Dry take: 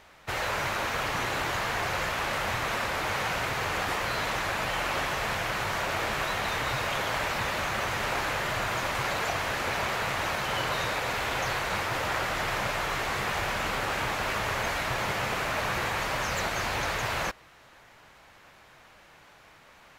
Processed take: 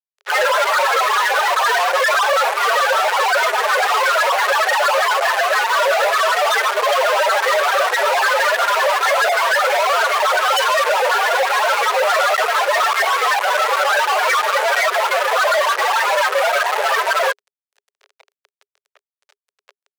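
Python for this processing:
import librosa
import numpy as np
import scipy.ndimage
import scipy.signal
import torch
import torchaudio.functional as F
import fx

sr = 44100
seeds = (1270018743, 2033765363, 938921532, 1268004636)

y = fx.spec_topn(x, sr, count=4)
y = fx.fuzz(y, sr, gain_db=55.0, gate_db=-58.0)
y = scipy.signal.sosfilt(scipy.signal.cheby1(6, 3, 400.0, 'highpass', fs=sr, output='sos'), y)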